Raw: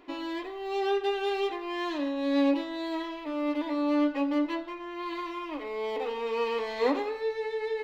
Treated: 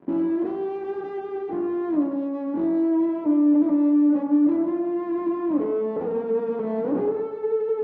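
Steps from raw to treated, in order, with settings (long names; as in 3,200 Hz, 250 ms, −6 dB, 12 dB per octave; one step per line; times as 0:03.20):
0:00.45–0:01.17: spectral envelope flattened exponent 0.3
speech leveller within 4 dB 2 s
fuzz pedal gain 45 dB, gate −49 dBFS
four-pole ladder band-pass 240 Hz, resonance 40%
on a send: convolution reverb RT60 1.4 s, pre-delay 8 ms, DRR 3.5 dB
on the sum: level +3.5 dB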